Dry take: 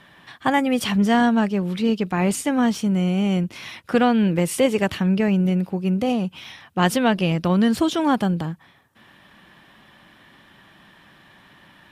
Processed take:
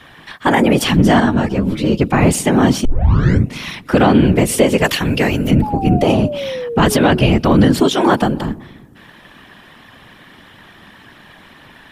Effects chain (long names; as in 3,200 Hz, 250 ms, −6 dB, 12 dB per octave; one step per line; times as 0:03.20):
0:04.84–0:05.51: spectral tilt +3 dB per octave
feedback echo with a low-pass in the loop 126 ms, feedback 64%, low-pass 810 Hz, level −20 dB
random phases in short frames
0:02.85: tape start 0.70 s
0:05.62–0:07.35: sound drawn into the spectrogram fall 330–870 Hz −32 dBFS
0:07.87–0:08.44: low-shelf EQ 180 Hz −9.5 dB
boost into a limiter +9.5 dB
0:01.20–0:02.00: string-ensemble chorus
level −1 dB